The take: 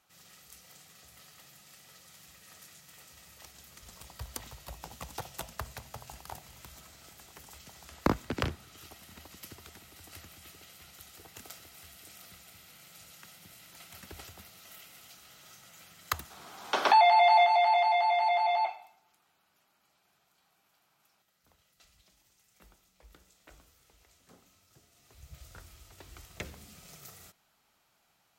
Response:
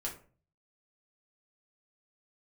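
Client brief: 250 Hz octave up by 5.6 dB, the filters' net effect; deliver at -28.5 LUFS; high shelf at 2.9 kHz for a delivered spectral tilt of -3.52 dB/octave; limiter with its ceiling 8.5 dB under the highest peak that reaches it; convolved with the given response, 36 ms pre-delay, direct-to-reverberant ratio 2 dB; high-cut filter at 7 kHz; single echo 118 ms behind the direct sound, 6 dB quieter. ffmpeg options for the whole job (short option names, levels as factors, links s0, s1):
-filter_complex "[0:a]lowpass=7000,equalizer=f=250:t=o:g=7,highshelf=f=2900:g=5.5,alimiter=limit=0.133:level=0:latency=1,aecho=1:1:118:0.501,asplit=2[s0][s1];[1:a]atrim=start_sample=2205,adelay=36[s2];[s1][s2]afir=irnorm=-1:irlink=0,volume=0.708[s3];[s0][s3]amix=inputs=2:normalize=0,volume=1.06"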